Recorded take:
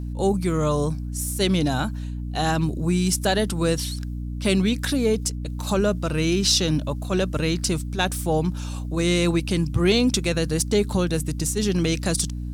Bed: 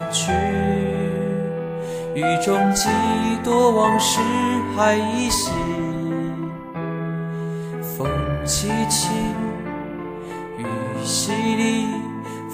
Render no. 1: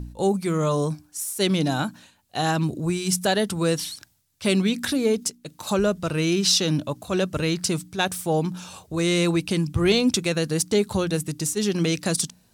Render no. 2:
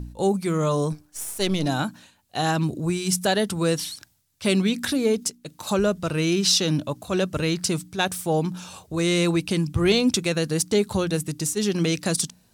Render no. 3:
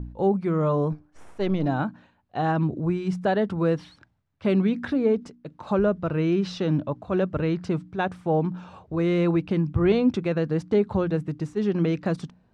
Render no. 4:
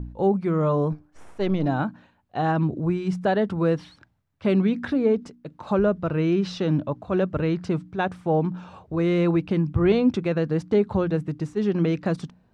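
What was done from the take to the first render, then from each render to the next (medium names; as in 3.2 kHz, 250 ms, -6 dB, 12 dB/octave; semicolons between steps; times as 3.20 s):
de-hum 60 Hz, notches 5
0.92–1.66 s: partial rectifier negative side -7 dB
low-pass 1.5 kHz 12 dB/octave
trim +1 dB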